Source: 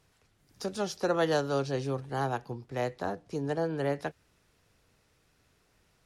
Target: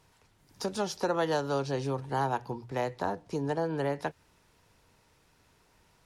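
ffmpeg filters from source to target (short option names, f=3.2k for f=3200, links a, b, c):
-af "acompressor=threshold=-32dB:ratio=2,equalizer=f=930:t=o:w=0.21:g=9.5,bandreject=f=60:t=h:w=6,bandreject=f=120:t=h:w=6,volume=3dB"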